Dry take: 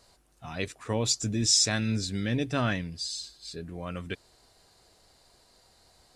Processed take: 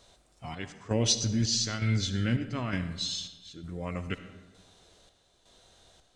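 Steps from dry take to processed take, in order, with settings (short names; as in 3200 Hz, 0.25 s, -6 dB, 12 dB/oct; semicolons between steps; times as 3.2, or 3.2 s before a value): chopper 1.1 Hz, depth 60%, duty 60%; formant shift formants -3 st; digital reverb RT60 1.3 s, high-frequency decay 0.55×, pre-delay 25 ms, DRR 10.5 dB; gain +1.5 dB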